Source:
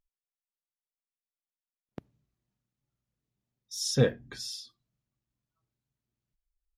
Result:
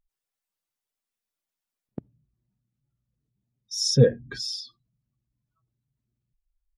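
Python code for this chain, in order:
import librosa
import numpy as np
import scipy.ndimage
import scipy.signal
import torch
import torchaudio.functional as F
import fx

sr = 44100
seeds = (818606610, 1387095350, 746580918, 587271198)

y = fx.spec_expand(x, sr, power=1.6)
y = y * librosa.db_to_amplitude(7.0)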